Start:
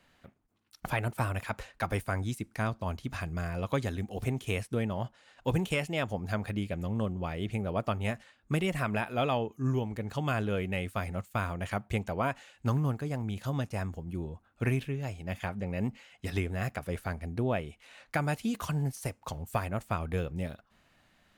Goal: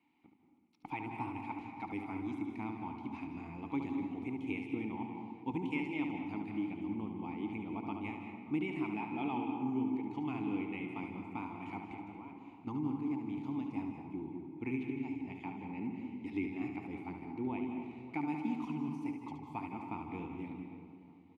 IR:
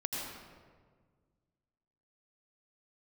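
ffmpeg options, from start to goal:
-filter_complex "[0:a]asettb=1/sr,asplit=3[link_01][link_02][link_03];[link_01]atrim=end=11.934[link_04];[link_02]atrim=start=11.93:end=12.67,asetpts=PTS-STARTPTS,afade=type=in:duration=0.004:curve=qsin,afade=type=out:start_time=0.736:duration=0.004:curve=qsin,acompressor=threshold=-38dB:ratio=12[link_05];[link_03]atrim=start=12.666[link_06];[link_04][link_05]acrossfade=duration=0.004:curve1=hsin:curve2=qsin[link_07];[link_07][link_06]acrossfade=duration=0.004:curve1=qsin:curve2=hsin,asplit=3[link_08][link_09][link_10];[link_08]bandpass=frequency=300:width_type=q:width=8,volume=0dB[link_11];[link_09]bandpass=frequency=870:width_type=q:width=8,volume=-6dB[link_12];[link_10]bandpass=frequency=2240:width_type=q:width=8,volume=-9dB[link_13];[link_11][link_12][link_13]amix=inputs=3:normalize=0,asplit=2[link_14][link_15];[link_15]adelay=582,lowpass=frequency=1400:poles=1,volume=-15dB,asplit=2[link_16][link_17];[link_17]adelay=582,lowpass=frequency=1400:poles=1,volume=0.34,asplit=2[link_18][link_19];[link_19]adelay=582,lowpass=frequency=1400:poles=1,volume=0.34[link_20];[link_14][link_16][link_18][link_20]amix=inputs=4:normalize=0,asplit=2[link_21][link_22];[1:a]atrim=start_sample=2205,adelay=72[link_23];[link_22][link_23]afir=irnorm=-1:irlink=0,volume=-6dB[link_24];[link_21][link_24]amix=inputs=2:normalize=0,volume=4.5dB"

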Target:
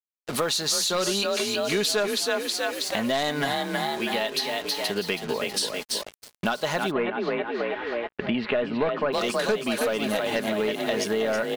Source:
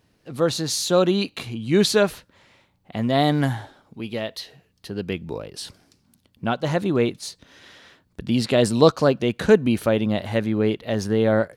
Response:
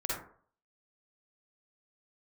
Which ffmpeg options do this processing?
-filter_complex "[0:a]asplit=7[link_01][link_02][link_03][link_04][link_05][link_06][link_07];[link_02]adelay=322,afreqshift=38,volume=-6.5dB[link_08];[link_03]adelay=644,afreqshift=76,volume=-12.3dB[link_09];[link_04]adelay=966,afreqshift=114,volume=-18.2dB[link_10];[link_05]adelay=1288,afreqshift=152,volume=-24dB[link_11];[link_06]adelay=1610,afreqshift=190,volume=-29.9dB[link_12];[link_07]adelay=1932,afreqshift=228,volume=-35.7dB[link_13];[link_01][link_08][link_09][link_10][link_11][link_12][link_13]amix=inputs=7:normalize=0,agate=range=-11dB:threshold=-39dB:ratio=16:detection=peak,highpass=frequency=1000:poles=1,acontrast=47,aeval=exprs='0.708*(cos(1*acos(clip(val(0)/0.708,-1,1)))-cos(1*PI/2))+0.0178*(cos(3*acos(clip(val(0)/0.708,-1,1)))-cos(3*PI/2))+0.0141*(cos(4*acos(clip(val(0)/0.708,-1,1)))-cos(4*PI/2))+0.141*(cos(5*acos(clip(val(0)/0.708,-1,1)))-cos(5*PI/2))':channel_layout=same,aecho=1:1:4.8:0.38,acrusher=bits=5:mix=0:aa=0.5,asplit=3[link_14][link_15][link_16];[link_14]afade=type=out:start_time=6.9:duration=0.02[link_17];[link_15]lowpass=frequency=2500:width=0.5412,lowpass=frequency=2500:width=1.3066,afade=type=in:start_time=6.9:duration=0.02,afade=type=out:start_time=9.12:duration=0.02[link_18];[link_16]afade=type=in:start_time=9.12:duration=0.02[link_19];[link_17][link_18][link_19]amix=inputs=3:normalize=0,acompressor=threshold=-29dB:ratio=5,volume=4.5dB"

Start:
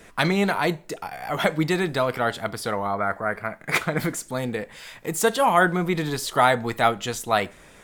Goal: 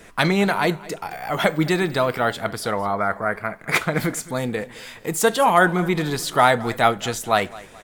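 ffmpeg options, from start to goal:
ffmpeg -i in.wav -filter_complex "[0:a]aecho=1:1:215|430|645:0.1|0.039|0.0152,asettb=1/sr,asplit=3[link_01][link_02][link_03];[link_01]atrim=end=1.114[link_04];[link_02]atrim=start=1.11:end=2.37,asetpts=PTS-STARTPTS,afade=type=in:duration=0.004:curve=qsin,afade=type=out:start_time=1.256:duration=0.004:curve=qsin,aeval=exprs='val(0)+0.00316*sin(2*PI*16000*n/s)':channel_layout=same[link_05];[link_03]atrim=start=2.366[link_06];[link_04][link_05]acrossfade=duration=0.004:curve1=hsin:curve2=qsin[link_07];[link_07][link_06]acrossfade=duration=0.004:curve1=qsin:curve2=hsin,volume=2.5dB" out.wav

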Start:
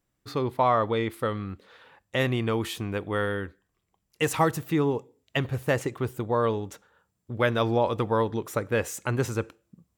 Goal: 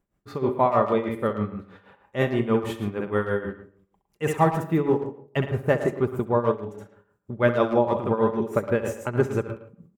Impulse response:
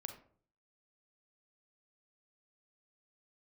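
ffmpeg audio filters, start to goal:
-filter_complex "[0:a]acontrast=26,asettb=1/sr,asplit=3[link_01][link_02][link_03];[link_01]atrim=end=4.844[link_04];[link_02]atrim=start=4.84:end=5.43,asetpts=PTS-STARTPTS,afade=type=in:duration=0.004:curve=qsin,afade=type=out:start_time=0.586:duration=0.004:curve=qsin,aeval=exprs='sgn(val(0))*max(abs(val(0))-0.01,0)':channel_layout=same[link_05];[link_03]atrim=start=5.426[link_06];[link_04][link_05]acrossfade=duration=0.004:curve1=hsin:curve2=qsin[link_07];[link_07][link_06]acrossfade=duration=0.004:curve1=qsin:curve2=hsin,firequalizer=gain_entry='entry(370,0);entry(4300,-14);entry(7000,-11)':delay=0.05:min_phase=1,asplit=2[link_08][link_09];[1:a]atrim=start_sample=2205,adelay=67[link_10];[link_09][link_10]afir=irnorm=-1:irlink=0,volume=-1dB[link_11];[link_08][link_11]amix=inputs=2:normalize=0,tremolo=f=6.3:d=0.79,aecho=1:1:5:0.35,asplit=2[link_12][link_13];[link_13]adelay=110,highpass=300,lowpass=3400,asoftclip=type=hard:threshold=-14dB,volume=-11dB[link_14];[link_12][link_14]amix=inputs=2:normalize=0,asettb=1/sr,asplit=3[link_15][link_16][link_17];[link_15]atrim=end=6.514[link_18];[link_16]atrim=start=6.51:end=7.33,asetpts=PTS-STARTPTS,afade=type=in:duration=0.004:curve=qsin,afade=type=out:start_time=0.816:duration=0.004:curve=qsin,acompressor=threshold=-30dB:ratio=3[link_19];[link_17]atrim=start=7.326[link_20];[link_18][link_19]acrossfade=duration=0.004:curve1=hsin:curve2=qsin[link_21];[link_21][link_20]acrossfade=duration=0.004:curve1=qsin:curve2=hsin"

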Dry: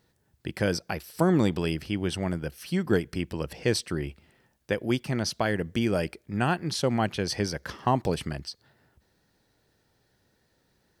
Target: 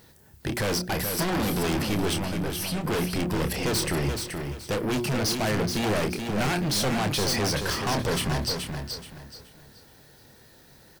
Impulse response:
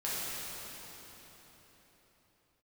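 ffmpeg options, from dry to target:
-filter_complex "[0:a]highshelf=frequency=9800:gain=9,bandreject=frequency=60:width_type=h:width=6,bandreject=frequency=120:width_type=h:width=6,bandreject=frequency=180:width_type=h:width=6,bandreject=frequency=240:width_type=h:width=6,bandreject=frequency=300:width_type=h:width=6,bandreject=frequency=360:width_type=h:width=6,asplit=2[link_01][link_02];[link_02]aeval=exprs='0.335*sin(PI/2*7.94*val(0)/0.335)':channel_layout=same,volume=-11.5dB[link_03];[link_01][link_03]amix=inputs=2:normalize=0,asettb=1/sr,asplit=3[link_04][link_05][link_06];[link_04]atrim=end=2.134[link_07];[link_05]atrim=start=2.13:end=2.85,asetpts=PTS-STARTPTS,afade=type=in:duration=0.004:curve=qsin,afade=type=out:start_time=0.716:duration=0.004:curve=qsin,acompressor=threshold=-28dB:ratio=6[link_08];[link_06]atrim=start=2.846[link_09];[link_07][link_08]acrossfade=duration=0.004:curve1=hsin:curve2=qsin[link_10];[link_10][link_09]acrossfade=duration=0.004:curve1=qsin:curve2=hsin,asplit=2[link_11][link_12];[link_12]adelay=28,volume=-8.5dB[link_13];[link_11][link_13]amix=inputs=2:normalize=0,asoftclip=type=tanh:threshold=-23.5dB,aecho=1:1:427|854|1281|1708:0.501|0.145|0.0421|0.0122"

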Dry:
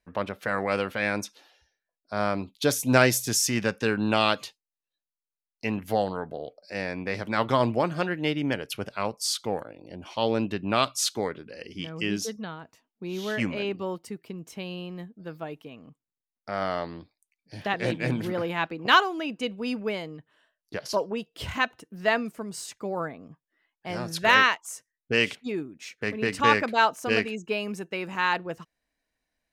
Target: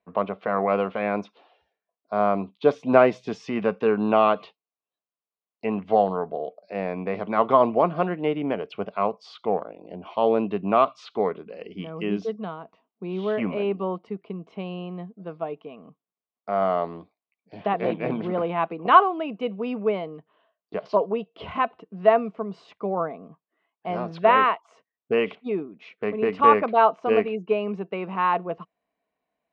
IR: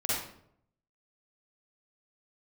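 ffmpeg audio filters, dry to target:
-filter_complex "[0:a]highpass=110,equalizer=frequency=120:width_type=q:width=4:gain=-9,equalizer=frequency=190:width_type=q:width=4:gain=7,equalizer=frequency=430:width_type=q:width=4:gain=8,equalizer=frequency=690:width_type=q:width=4:gain=10,equalizer=frequency=1100:width_type=q:width=4:gain=9,equalizer=frequency=1700:width_type=q:width=4:gain=-8,lowpass=frequency=3200:width=0.5412,lowpass=frequency=3200:width=1.3066,acrossover=split=2500[link_01][link_02];[link_02]acompressor=threshold=-43dB:ratio=4:attack=1:release=60[link_03];[link_01][link_03]amix=inputs=2:normalize=0,volume=-1dB"

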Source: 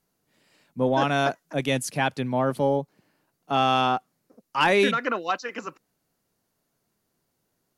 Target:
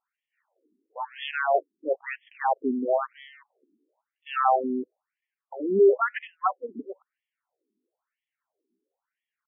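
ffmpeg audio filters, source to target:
ffmpeg -i in.wav -filter_complex "[0:a]aeval=exprs='0.376*(cos(1*acos(clip(val(0)/0.376,-1,1)))-cos(1*PI/2))+0.00668*(cos(7*acos(clip(val(0)/0.376,-1,1)))-cos(7*PI/2))+0.00376*(cos(8*acos(clip(val(0)/0.376,-1,1)))-cos(8*PI/2))':channel_layout=same,atempo=0.82,asplit=2[link_01][link_02];[link_02]adynamicsmooth=sensitivity=1:basefreq=660,volume=-2dB[link_03];[link_01][link_03]amix=inputs=2:normalize=0,afftfilt=real='re*between(b*sr/1024,290*pow(2500/290,0.5+0.5*sin(2*PI*1*pts/sr))/1.41,290*pow(2500/290,0.5+0.5*sin(2*PI*1*pts/sr))*1.41)':imag='im*between(b*sr/1024,290*pow(2500/290,0.5+0.5*sin(2*PI*1*pts/sr))/1.41,290*pow(2500/290,0.5+0.5*sin(2*PI*1*pts/sr))*1.41)':win_size=1024:overlap=0.75" out.wav

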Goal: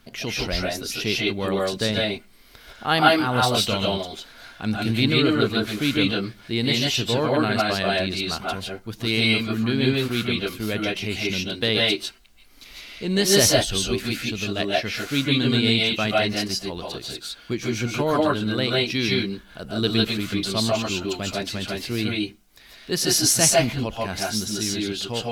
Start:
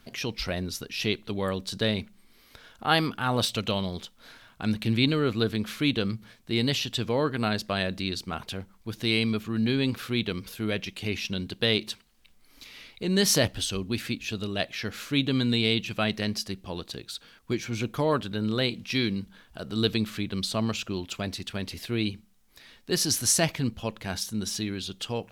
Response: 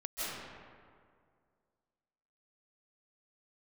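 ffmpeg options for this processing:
-filter_complex "[1:a]atrim=start_sample=2205,afade=type=out:start_time=0.24:duration=0.01,atrim=end_sample=11025,asetrate=48510,aresample=44100[link_01];[0:a][link_01]afir=irnorm=-1:irlink=0,volume=7.5dB"

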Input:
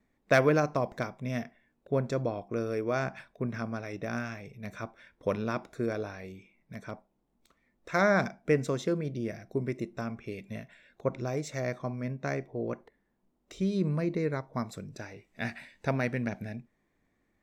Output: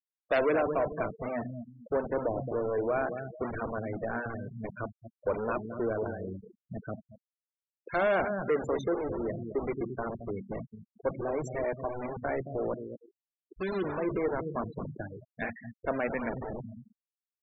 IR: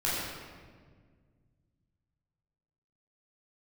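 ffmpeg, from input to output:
-filter_complex "[0:a]highshelf=frequency=2100:gain=-8,asplit=2[link_01][link_02];[link_02]adelay=221,lowpass=frequency=4400:poles=1,volume=-12dB,asplit=2[link_03][link_04];[link_04]adelay=221,lowpass=frequency=4400:poles=1,volume=0.34,asplit=2[link_05][link_06];[link_06]adelay=221,lowpass=frequency=4400:poles=1,volume=0.34[link_07];[link_01][link_03][link_05][link_07]amix=inputs=4:normalize=0,acrossover=split=270|3500[link_08][link_09][link_10];[link_08]aeval=exprs='(mod(70.8*val(0)+1,2)-1)/70.8':channel_layout=same[link_11];[link_11][link_09][link_10]amix=inputs=3:normalize=0,bass=frequency=250:gain=0,treble=frequency=4000:gain=4,asoftclip=type=tanh:threshold=-26.5dB,afftfilt=real='re*gte(hypot(re,im),0.0158)':imag='im*gte(hypot(re,im),0.0158)':win_size=1024:overlap=0.75,volume=5dB"

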